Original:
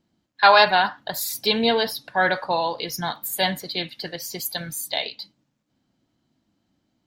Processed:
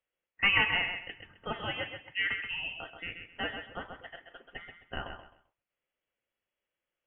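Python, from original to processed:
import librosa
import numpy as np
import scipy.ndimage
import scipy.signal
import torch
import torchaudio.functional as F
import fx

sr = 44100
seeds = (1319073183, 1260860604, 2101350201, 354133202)

y = scipy.signal.sosfilt(scipy.signal.butter(2, 1100.0, 'highpass', fs=sr, output='sos'), x)
y = fx.echo_feedback(y, sr, ms=131, feedback_pct=25, wet_db=-7)
y = fx.freq_invert(y, sr, carrier_hz=3600)
y = F.gain(torch.from_numpy(y), -8.0).numpy()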